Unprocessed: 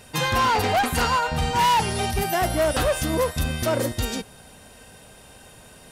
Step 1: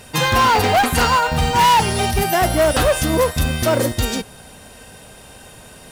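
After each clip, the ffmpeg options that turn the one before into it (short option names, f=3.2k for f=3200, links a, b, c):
-af "acrusher=bits=6:mode=log:mix=0:aa=0.000001,volume=6dB"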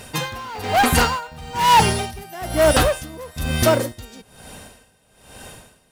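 -af "aeval=exprs='val(0)*pow(10,-22*(0.5-0.5*cos(2*PI*1.1*n/s))/20)':c=same,volume=2.5dB"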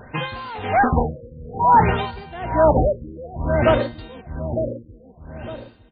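-filter_complex "[0:a]asplit=2[a][b];[b]adelay=907,lowpass=f=1k:p=1,volume=-5.5dB,asplit=2[c][d];[d]adelay=907,lowpass=f=1k:p=1,volume=0.35,asplit=2[e][f];[f]adelay=907,lowpass=f=1k:p=1,volume=0.35,asplit=2[g][h];[h]adelay=907,lowpass=f=1k:p=1,volume=0.35[i];[a][c][e][g][i]amix=inputs=5:normalize=0,afftfilt=real='re*lt(b*sr/1024,560*pow(4800/560,0.5+0.5*sin(2*PI*0.57*pts/sr)))':imag='im*lt(b*sr/1024,560*pow(4800/560,0.5+0.5*sin(2*PI*0.57*pts/sr)))':win_size=1024:overlap=0.75"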